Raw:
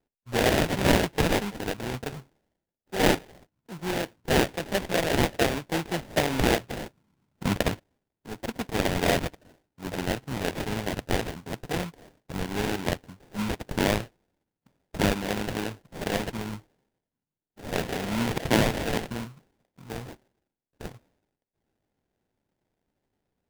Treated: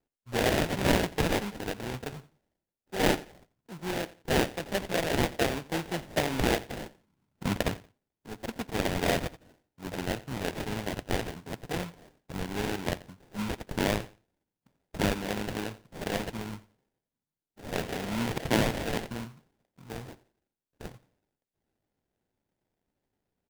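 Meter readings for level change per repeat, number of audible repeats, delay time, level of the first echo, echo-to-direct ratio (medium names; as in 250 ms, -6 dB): -12.0 dB, 2, 87 ms, -19.0 dB, -18.5 dB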